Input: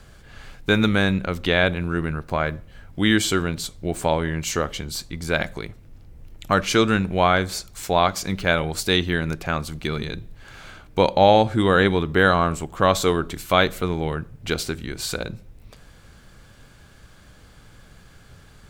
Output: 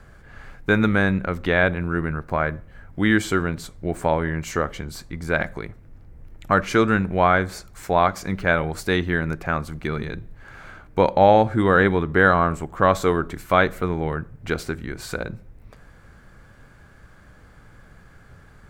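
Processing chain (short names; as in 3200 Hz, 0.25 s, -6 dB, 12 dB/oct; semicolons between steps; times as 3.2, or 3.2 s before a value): resonant high shelf 2400 Hz -7.5 dB, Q 1.5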